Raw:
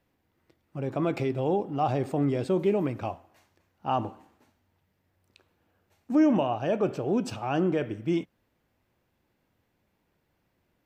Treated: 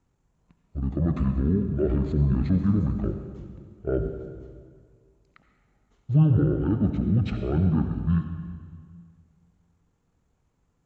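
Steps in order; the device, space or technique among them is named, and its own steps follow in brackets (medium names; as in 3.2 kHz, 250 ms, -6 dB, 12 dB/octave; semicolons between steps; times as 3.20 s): monster voice (pitch shift -12 st; bass shelf 170 Hz +6 dB; reverberation RT60 1.9 s, pre-delay 63 ms, DRR 7 dB)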